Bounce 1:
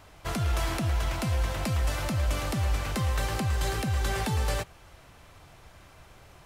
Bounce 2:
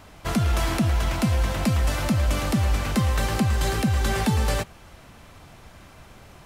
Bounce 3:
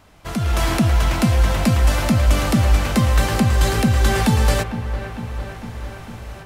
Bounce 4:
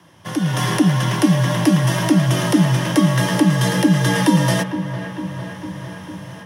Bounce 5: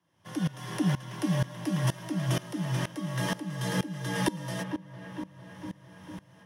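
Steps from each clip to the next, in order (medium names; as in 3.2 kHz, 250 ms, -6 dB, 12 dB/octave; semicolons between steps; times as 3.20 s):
peaking EQ 220 Hz +7.5 dB 0.66 oct; trim +4.5 dB
level rider gain up to 11.5 dB; feedback echo behind a low-pass 452 ms, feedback 68%, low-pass 2.5 kHz, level -11.5 dB; trim -4 dB
frequency shift +74 Hz; rippled EQ curve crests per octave 1.2, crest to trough 9 dB
sawtooth tremolo in dB swelling 2.1 Hz, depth 20 dB; trim -7.5 dB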